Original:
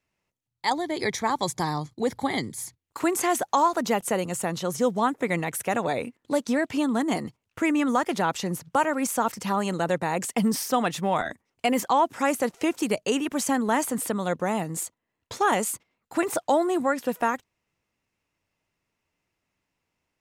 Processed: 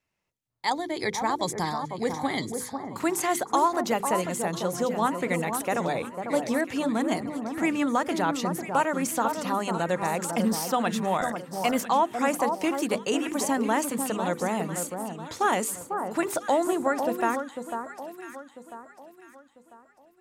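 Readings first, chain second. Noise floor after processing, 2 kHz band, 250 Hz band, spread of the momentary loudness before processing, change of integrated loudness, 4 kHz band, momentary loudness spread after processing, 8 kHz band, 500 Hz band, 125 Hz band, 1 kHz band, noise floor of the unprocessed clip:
−58 dBFS, −1.0 dB, −1.5 dB, 7 LU, −1.0 dB, −1.0 dB, 8 LU, −1.0 dB, −1.0 dB, −1.5 dB, −0.5 dB, −82 dBFS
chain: mains-hum notches 50/100/150/200/250/300/350/400/450/500 Hz
delay that swaps between a low-pass and a high-pass 498 ms, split 1,400 Hz, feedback 57%, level −6 dB
level −1.5 dB

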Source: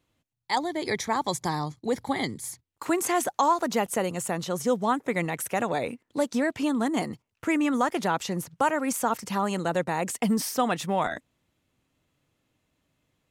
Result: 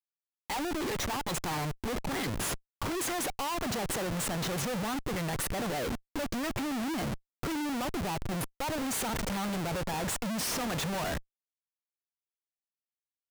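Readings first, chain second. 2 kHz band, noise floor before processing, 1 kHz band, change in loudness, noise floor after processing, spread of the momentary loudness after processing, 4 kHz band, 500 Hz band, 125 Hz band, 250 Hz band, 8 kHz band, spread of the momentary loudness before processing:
−4.5 dB, −79 dBFS, −8.5 dB, −5.5 dB, below −85 dBFS, 4 LU, 0.0 dB, −8.0 dB, −0.5 dB, −6.0 dB, −1.5 dB, 6 LU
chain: gain on a spectral selection 0:07.53–0:08.81, 1,300–8,700 Hz −18 dB
comparator with hysteresis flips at −37.5 dBFS
level −4 dB

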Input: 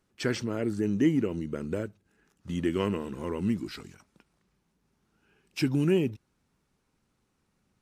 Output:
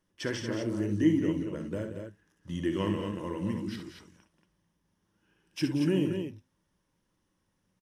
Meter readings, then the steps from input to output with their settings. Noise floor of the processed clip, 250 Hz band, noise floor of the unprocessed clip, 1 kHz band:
−77 dBFS, −1.0 dB, −75 dBFS, −1.5 dB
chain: EQ curve with evenly spaced ripples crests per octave 1.2, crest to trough 7 dB
flanger 0.89 Hz, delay 6.2 ms, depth 3.9 ms, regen −77%
on a send: multi-tap delay 59/68/182/231 ms −9.5/−13/−11.5/−6.5 dB

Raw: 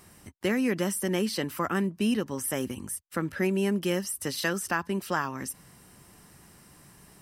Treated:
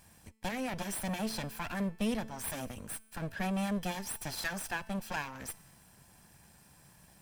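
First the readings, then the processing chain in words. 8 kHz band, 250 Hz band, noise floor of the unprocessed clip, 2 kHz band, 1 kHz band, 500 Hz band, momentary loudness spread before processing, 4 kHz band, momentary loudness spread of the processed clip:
−6.5 dB, −8.0 dB, −56 dBFS, −6.5 dB, −5.5 dB, −11.0 dB, 7 LU, −6.0 dB, 8 LU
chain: lower of the sound and its delayed copy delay 1.2 ms
tuned comb filter 220 Hz, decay 1.1 s, mix 50%
level +1.5 dB

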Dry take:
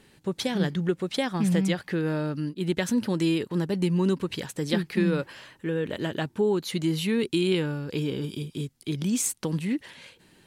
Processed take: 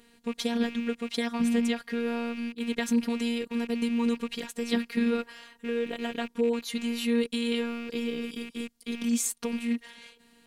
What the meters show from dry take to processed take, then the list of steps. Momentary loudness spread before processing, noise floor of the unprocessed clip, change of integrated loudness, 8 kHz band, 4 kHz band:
8 LU, −61 dBFS, −2.5 dB, −2.5 dB, −2.0 dB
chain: loose part that buzzes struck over −38 dBFS, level −30 dBFS
phases set to zero 234 Hz

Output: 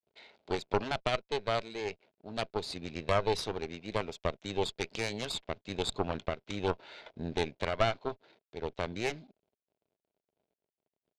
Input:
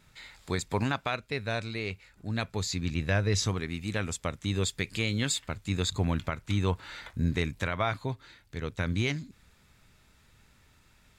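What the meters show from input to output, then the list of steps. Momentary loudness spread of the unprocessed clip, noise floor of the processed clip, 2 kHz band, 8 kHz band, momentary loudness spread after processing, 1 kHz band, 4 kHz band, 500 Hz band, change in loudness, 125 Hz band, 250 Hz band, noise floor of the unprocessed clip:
9 LU, below −85 dBFS, −5.0 dB, −10.5 dB, 10 LU, +1.0 dB, −3.0 dB, +2.0 dB, −3.5 dB, −11.0 dB, −7.0 dB, −63 dBFS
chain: slack as between gear wheels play −46.5 dBFS
loudspeaker in its box 280–4,700 Hz, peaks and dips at 280 Hz −3 dB, 410 Hz +6 dB, 640 Hz +8 dB, 1,200 Hz −9 dB, 1,800 Hz −8 dB
harmonic generator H 4 −8 dB, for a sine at −14 dBFS
level −2.5 dB

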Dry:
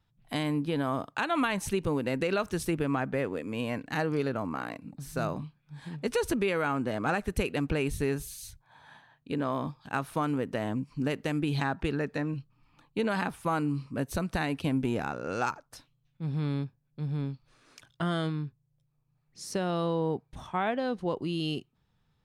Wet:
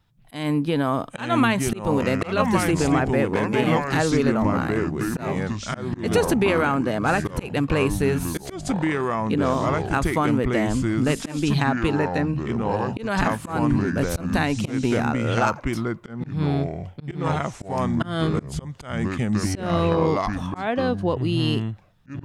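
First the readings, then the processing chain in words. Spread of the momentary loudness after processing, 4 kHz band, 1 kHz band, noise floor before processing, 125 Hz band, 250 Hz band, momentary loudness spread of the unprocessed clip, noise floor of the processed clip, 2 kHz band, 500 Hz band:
8 LU, +7.5 dB, +8.5 dB, −73 dBFS, +9.5 dB, +9.5 dB, 9 LU, −44 dBFS, +8.0 dB, +8.5 dB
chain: delay with pitch and tempo change per echo 741 ms, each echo −4 semitones, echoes 2
volume swells 191 ms
level +7.5 dB

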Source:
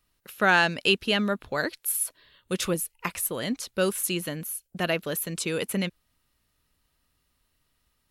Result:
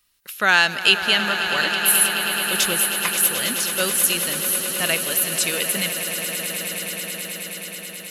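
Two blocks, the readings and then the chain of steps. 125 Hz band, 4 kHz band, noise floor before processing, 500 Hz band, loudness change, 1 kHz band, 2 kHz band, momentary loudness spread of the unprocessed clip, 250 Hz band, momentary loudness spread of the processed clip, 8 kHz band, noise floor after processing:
−1.5 dB, +11.0 dB, −74 dBFS, +0.5 dB, +8.0 dB, +4.5 dB, +8.0 dB, 10 LU, −1.5 dB, 12 LU, +12.5 dB, −37 dBFS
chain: tilt shelving filter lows −7.5 dB, about 1,200 Hz
echo that builds up and dies away 107 ms, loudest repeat 8, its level −13 dB
level +3 dB

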